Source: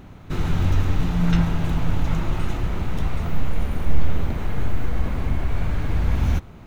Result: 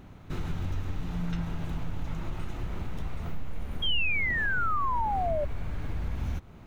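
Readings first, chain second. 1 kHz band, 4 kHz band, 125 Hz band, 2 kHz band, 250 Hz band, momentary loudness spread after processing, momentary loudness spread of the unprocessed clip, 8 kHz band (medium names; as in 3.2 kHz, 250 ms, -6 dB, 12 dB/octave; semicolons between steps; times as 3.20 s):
+2.5 dB, +4.5 dB, -12.0 dB, +5.0 dB, -12.0 dB, 12 LU, 6 LU, no reading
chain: compression 2.5:1, threshold -24 dBFS, peak gain reduction 11 dB; painted sound fall, 3.82–5.45 s, 570–3300 Hz -23 dBFS; trim -6 dB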